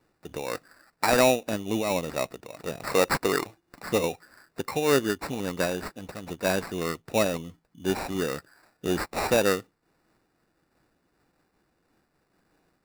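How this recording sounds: aliases and images of a low sample rate 3.2 kHz, jitter 0%; random flutter of the level

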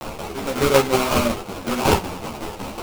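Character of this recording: a quantiser's noise floor 6-bit, dither triangular; tremolo saw down 5.4 Hz, depth 65%; aliases and images of a low sample rate 1.8 kHz, jitter 20%; a shimmering, thickened sound

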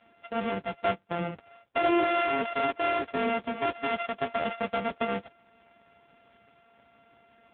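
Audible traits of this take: a buzz of ramps at a fixed pitch in blocks of 64 samples; AMR-NB

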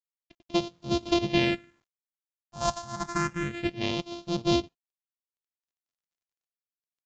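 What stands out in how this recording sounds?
a buzz of ramps at a fixed pitch in blocks of 128 samples; phasing stages 4, 0.29 Hz, lowest notch 350–1800 Hz; a quantiser's noise floor 12-bit, dither none; AAC

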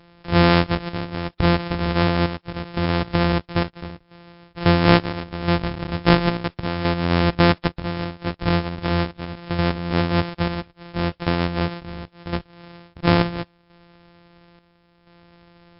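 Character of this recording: a buzz of ramps at a fixed pitch in blocks of 256 samples; chopped level 0.73 Hz, depth 60%, duty 65%; MP3

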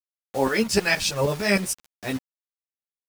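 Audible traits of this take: tremolo saw up 6.4 Hz, depth 85%; a quantiser's noise floor 6-bit, dither none; a shimmering, thickened sound

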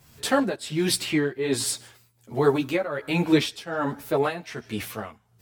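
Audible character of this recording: tremolo triangle 1.3 Hz, depth 85%; a shimmering, thickened sound

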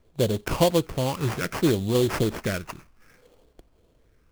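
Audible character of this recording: phasing stages 12, 0.62 Hz, lowest notch 590–2500 Hz; aliases and images of a low sample rate 3.8 kHz, jitter 20%

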